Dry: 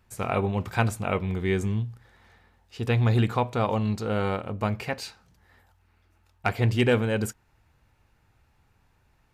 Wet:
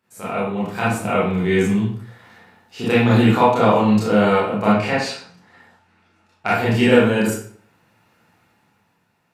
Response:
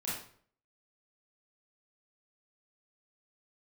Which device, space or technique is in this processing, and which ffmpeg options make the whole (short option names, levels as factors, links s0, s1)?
far laptop microphone: -filter_complex "[1:a]atrim=start_sample=2205[s0];[0:a][s0]afir=irnorm=-1:irlink=0,highpass=190,dynaudnorm=f=180:g=11:m=3.55,asettb=1/sr,asplit=3[s1][s2][s3];[s1]atrim=end=4.724[s4];[s2]atrim=start=4.72:end=6.47,asetpts=PTS-STARTPTS,afade=t=in:d=0.004:c=qsin,afade=t=out:st=1.746:d=0.004:c=qsin,lowpass=7600[s5];[s3]atrim=start=6.466[s6];[s4][s5]acrossfade=d=0.004:c1=hsin:c2=qsin[s7];[s7][s6]acrossfade=d=0.004:c1=qsin:c2=hsin"